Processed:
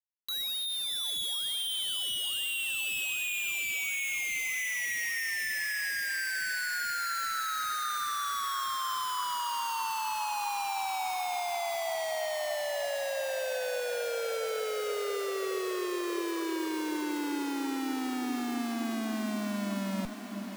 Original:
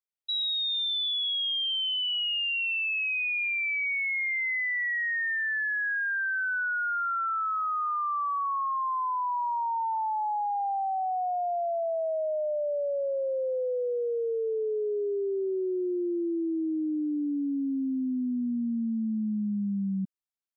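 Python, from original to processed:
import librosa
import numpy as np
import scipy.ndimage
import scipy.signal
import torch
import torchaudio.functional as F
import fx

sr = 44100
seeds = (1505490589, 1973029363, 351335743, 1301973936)

y = fx.schmitt(x, sr, flips_db=-42.0)
y = fx.echo_diffused(y, sr, ms=693, feedback_pct=68, wet_db=-8.5)
y = F.gain(torch.from_numpy(y), -4.5).numpy()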